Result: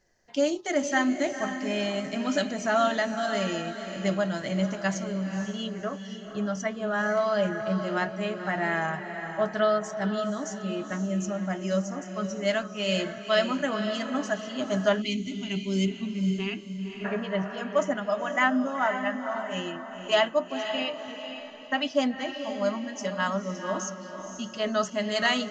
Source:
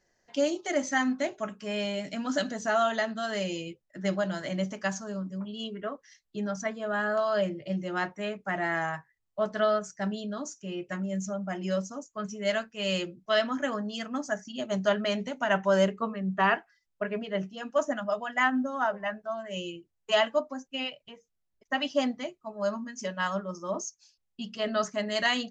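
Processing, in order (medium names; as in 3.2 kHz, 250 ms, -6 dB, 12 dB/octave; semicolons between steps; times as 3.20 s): bass shelf 120 Hz +5.5 dB; on a send: echo that smears into a reverb 503 ms, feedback 41%, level -8 dB; on the sum: time-frequency box 15.02–17.05 s, 420–2000 Hz -25 dB; trim +1.5 dB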